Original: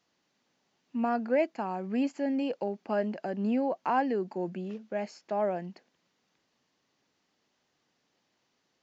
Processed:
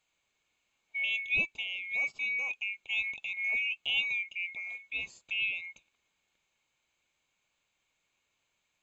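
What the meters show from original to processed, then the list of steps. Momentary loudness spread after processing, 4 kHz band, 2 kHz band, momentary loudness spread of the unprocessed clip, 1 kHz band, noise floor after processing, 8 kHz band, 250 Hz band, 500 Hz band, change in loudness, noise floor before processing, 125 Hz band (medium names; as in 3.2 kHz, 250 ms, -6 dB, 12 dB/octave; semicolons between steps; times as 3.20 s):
8 LU, +16.0 dB, +13.0 dB, 8 LU, -25.0 dB, -80 dBFS, no reading, under -25 dB, -27.0 dB, 0.0 dB, -77 dBFS, under -15 dB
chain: split-band scrambler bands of 2 kHz; trim -3.5 dB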